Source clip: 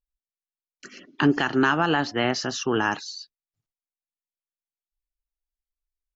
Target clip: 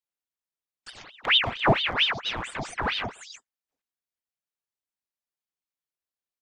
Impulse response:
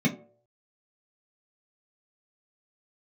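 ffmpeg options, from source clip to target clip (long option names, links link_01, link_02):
-filter_complex "[0:a]highpass=frequency=75:width=0.5412,highpass=frequency=75:width=1.3066,equalizer=frequency=680:width=0.32:gain=5.5,aecho=1:1:4:0.57,acrossover=split=540[link_01][link_02];[link_01]flanger=delay=7.9:depth=9:regen=35:speed=1.6:shape=triangular[link_03];[link_02]acompressor=threshold=-36dB:ratio=5[link_04];[link_03][link_04]amix=inputs=2:normalize=0,aeval=exprs='clip(val(0),-1,0.0668)':channel_layout=same,asplit=2[link_05][link_06];[1:a]atrim=start_sample=2205,asetrate=66150,aresample=44100[link_07];[link_06][link_07]afir=irnorm=-1:irlink=0,volume=-21dB[link_08];[link_05][link_08]amix=inputs=2:normalize=0,asetrate=42336,aresample=44100,aeval=exprs='val(0)*sin(2*PI*1900*n/s+1900*0.8/4.4*sin(2*PI*4.4*n/s))':channel_layout=same"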